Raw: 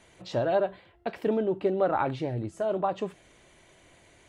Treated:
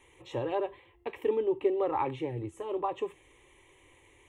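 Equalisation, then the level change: fixed phaser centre 980 Hz, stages 8; 0.0 dB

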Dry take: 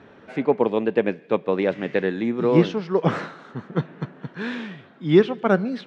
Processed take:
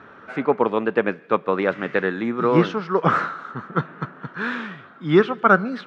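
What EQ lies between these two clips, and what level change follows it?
bell 1300 Hz +14.5 dB 0.72 oct; -1.0 dB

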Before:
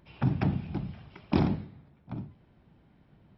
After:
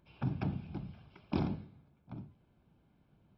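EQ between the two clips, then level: Butterworth band-stop 1900 Hz, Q 6.7; -8.0 dB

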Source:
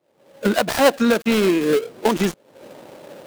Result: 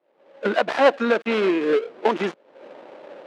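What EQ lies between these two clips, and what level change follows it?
BPF 340–2700 Hz; 0.0 dB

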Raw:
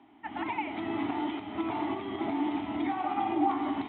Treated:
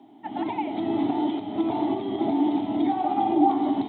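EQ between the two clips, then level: HPF 110 Hz 24 dB/oct; band shelf 1700 Hz -13 dB; +8.0 dB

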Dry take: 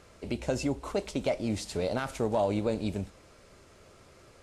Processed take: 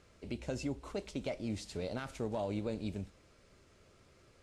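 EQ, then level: bell 800 Hz -5 dB 1.8 oct; high shelf 10000 Hz -10 dB; -6.0 dB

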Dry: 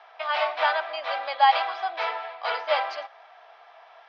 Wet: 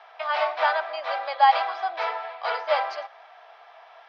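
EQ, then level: HPF 320 Hz 24 dB/oct; dynamic EQ 3000 Hz, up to -5 dB, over -43 dBFS, Q 1.2; +1.5 dB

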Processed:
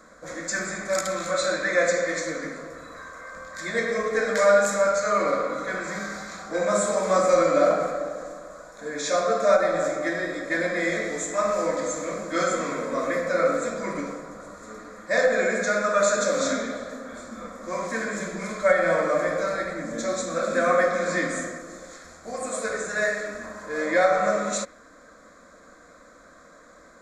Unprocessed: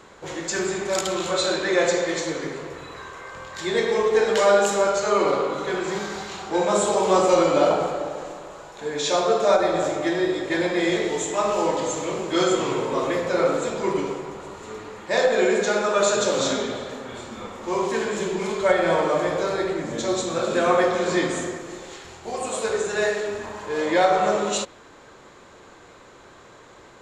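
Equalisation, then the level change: dynamic EQ 2200 Hz, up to +7 dB, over -43 dBFS, Q 1.8; fixed phaser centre 580 Hz, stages 8; 0.0 dB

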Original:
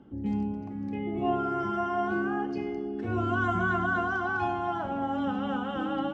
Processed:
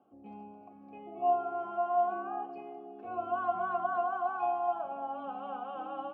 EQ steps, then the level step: vowel filter a; high shelf 2900 Hz -7 dB; notches 50/100 Hz; +4.5 dB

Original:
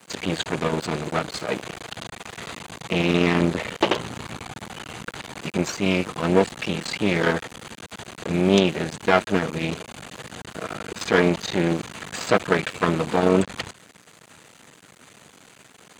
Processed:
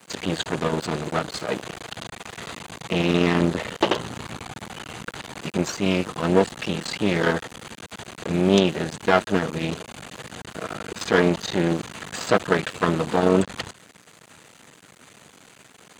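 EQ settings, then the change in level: dynamic EQ 2300 Hz, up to -5 dB, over -44 dBFS, Q 5.5; 0.0 dB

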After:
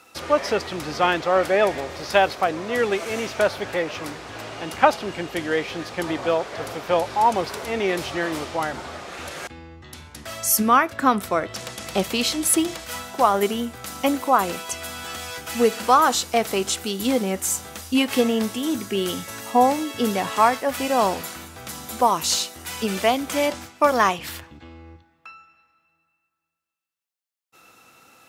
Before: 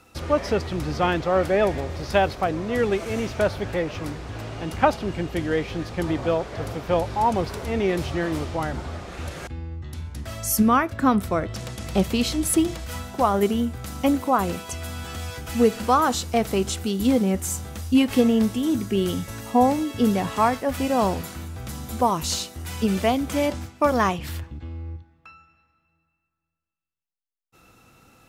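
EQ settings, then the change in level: HPF 610 Hz 6 dB/oct; +5.0 dB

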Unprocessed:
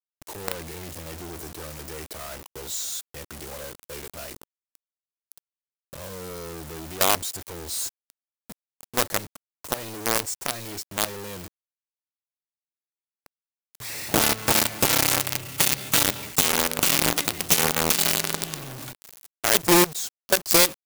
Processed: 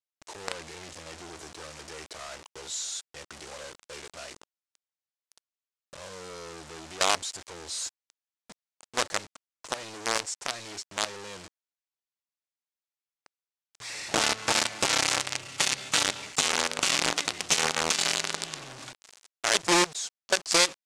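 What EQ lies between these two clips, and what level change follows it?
LPF 7900 Hz 24 dB/oct; low shelf 370 Hz -11.5 dB; -1.0 dB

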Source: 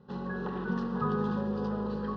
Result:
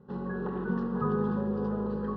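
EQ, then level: tilt shelf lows +7 dB; bell 390 Hz +3 dB 0.77 oct; bell 1500 Hz +6.5 dB 1.7 oct; -5.5 dB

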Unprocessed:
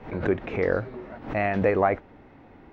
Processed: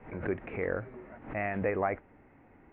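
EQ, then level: synth low-pass 2300 Hz, resonance Q 2.1; air absorption 390 m; -8.0 dB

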